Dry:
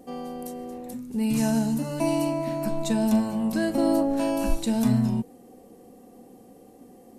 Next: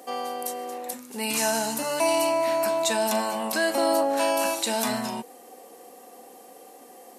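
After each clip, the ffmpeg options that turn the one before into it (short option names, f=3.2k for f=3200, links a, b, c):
-filter_complex "[0:a]highpass=740,asplit=2[a][b];[b]alimiter=level_in=4dB:limit=-24dB:level=0:latency=1:release=19,volume=-4dB,volume=2.5dB[c];[a][c]amix=inputs=2:normalize=0,volume=4dB"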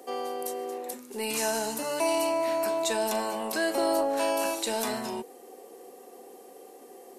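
-filter_complex "[0:a]equalizer=f=390:w=3.4:g=13,acrossover=split=350[a][b];[a]asoftclip=type=tanh:threshold=-31dB[c];[c][b]amix=inputs=2:normalize=0,volume=-4.5dB"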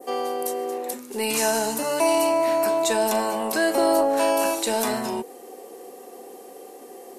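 -af "adynamicequalizer=threshold=0.00501:dfrequency=3700:dqfactor=0.72:tfrequency=3700:tqfactor=0.72:attack=5:release=100:ratio=0.375:range=1.5:mode=cutabove:tftype=bell,volume=6.5dB"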